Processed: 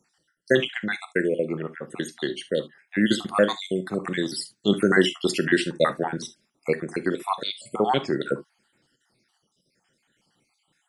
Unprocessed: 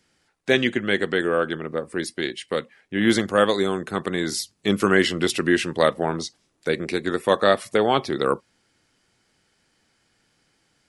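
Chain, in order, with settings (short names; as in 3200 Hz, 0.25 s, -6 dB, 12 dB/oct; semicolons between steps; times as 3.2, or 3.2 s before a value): random spectral dropouts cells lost 58%; resonant low shelf 110 Hz -7.5 dB, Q 1.5; non-linear reverb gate 90 ms flat, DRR 11 dB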